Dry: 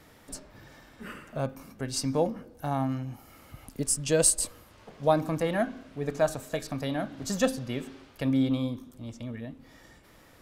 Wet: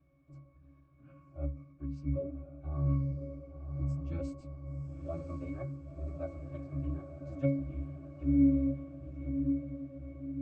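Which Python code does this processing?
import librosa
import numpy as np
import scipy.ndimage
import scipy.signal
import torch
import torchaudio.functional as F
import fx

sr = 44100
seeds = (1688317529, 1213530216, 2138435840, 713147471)

y = fx.pitch_keep_formants(x, sr, semitones=-11.0)
y = fx.octave_resonator(y, sr, note='C#', decay_s=0.29)
y = fx.echo_diffused(y, sr, ms=1051, feedback_pct=56, wet_db=-7.0)
y = F.gain(torch.from_numpy(y), 3.0).numpy()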